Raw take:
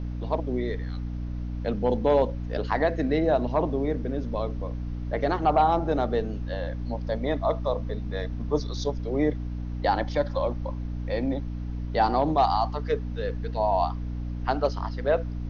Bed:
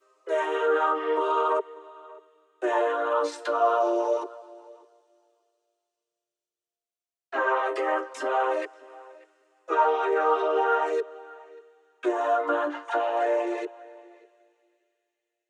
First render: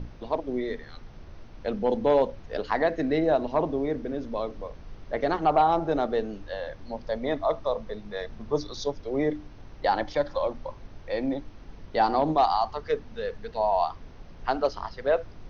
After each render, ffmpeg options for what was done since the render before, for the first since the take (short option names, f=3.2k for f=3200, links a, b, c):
-af "bandreject=f=60:t=h:w=6,bandreject=f=120:t=h:w=6,bandreject=f=180:t=h:w=6,bandreject=f=240:t=h:w=6,bandreject=f=300:t=h:w=6"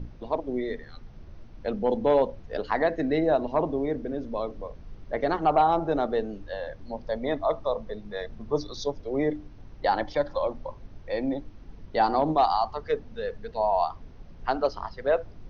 -af "afftdn=nr=6:nf=-46"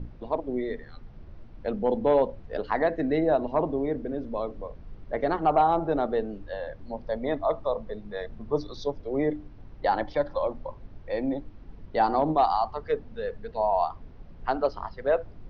-af "lowpass=f=5.8k:w=0.5412,lowpass=f=5.8k:w=1.3066,highshelf=f=4k:g=-9"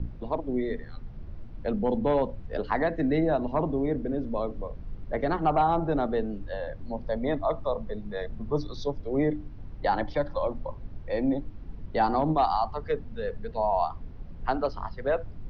-filter_complex "[0:a]acrossover=split=260|770[a][b][c];[a]acontrast=34[d];[b]alimiter=limit=-23dB:level=0:latency=1:release=488[e];[d][e][c]amix=inputs=3:normalize=0"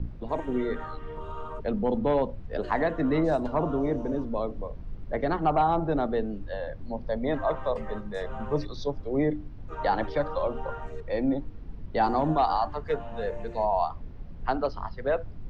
-filter_complex "[1:a]volume=-15.5dB[a];[0:a][a]amix=inputs=2:normalize=0"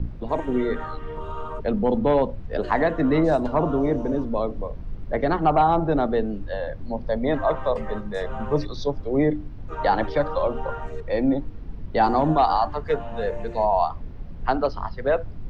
-af "volume=5dB"